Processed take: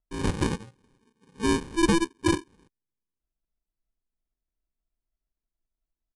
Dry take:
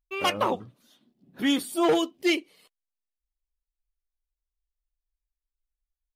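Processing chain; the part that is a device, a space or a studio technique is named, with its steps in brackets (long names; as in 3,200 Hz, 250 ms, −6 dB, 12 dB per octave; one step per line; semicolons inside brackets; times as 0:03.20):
crushed at another speed (tape speed factor 2×; decimation without filtering 33×; tape speed factor 0.5×)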